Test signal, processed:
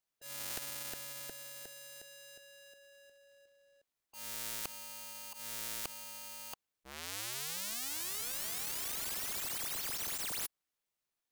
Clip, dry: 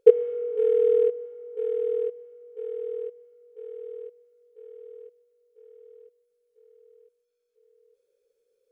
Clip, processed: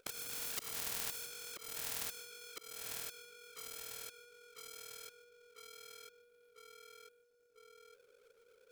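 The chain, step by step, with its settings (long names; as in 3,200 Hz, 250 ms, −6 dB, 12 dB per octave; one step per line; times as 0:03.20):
each half-wave held at its own peak
volume swells 350 ms
every bin compressed towards the loudest bin 10 to 1
level −4.5 dB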